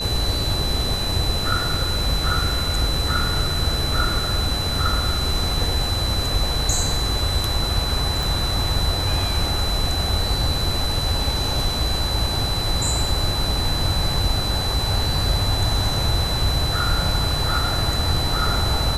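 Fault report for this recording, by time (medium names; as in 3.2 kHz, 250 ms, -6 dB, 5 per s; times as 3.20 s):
whine 4 kHz -25 dBFS
8.23 s: pop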